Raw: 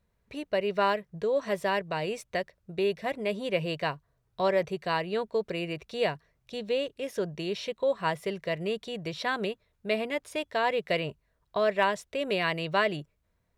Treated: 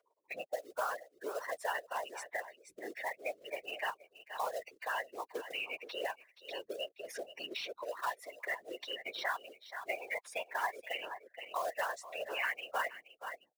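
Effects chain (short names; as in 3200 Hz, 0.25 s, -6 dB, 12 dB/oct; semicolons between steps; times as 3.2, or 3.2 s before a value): spectral gate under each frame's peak -15 dB strong; HPF 830 Hz 24 dB/oct; high shelf 2700 Hz -5 dB; comb 6.6 ms, depth 78%; in parallel at -2 dB: compressor 10:1, threshold -44 dBFS, peak gain reduction 21 dB; on the sum: short-mantissa float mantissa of 2-bit; whisperiser; on a send: echo 0.474 s -17 dB; on the sum: three-band squash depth 70%; gain -4 dB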